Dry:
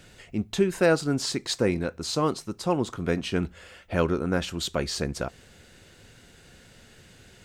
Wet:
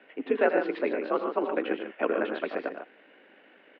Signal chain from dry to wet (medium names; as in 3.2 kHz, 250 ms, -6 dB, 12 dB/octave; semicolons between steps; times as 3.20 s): mistuned SSB +55 Hz 230–2700 Hz; loudspeakers at several distances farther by 57 m -12 dB, 74 m -8 dB, 97 m -8 dB; granular stretch 0.51×, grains 40 ms